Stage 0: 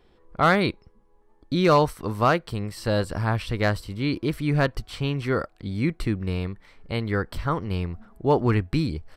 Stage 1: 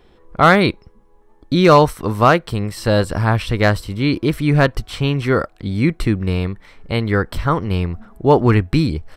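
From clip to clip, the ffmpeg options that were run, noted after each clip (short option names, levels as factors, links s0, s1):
-af "bandreject=f=4600:w=16,volume=2.51"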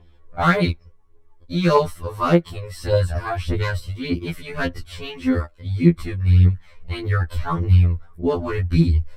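-af "equalizer=f=74:w=1.5:g=9.5,aphaser=in_gain=1:out_gain=1:delay=2.1:decay=0.64:speed=1.7:type=triangular,afftfilt=real='re*2*eq(mod(b,4),0)':imag='im*2*eq(mod(b,4),0)':win_size=2048:overlap=0.75,volume=0.447"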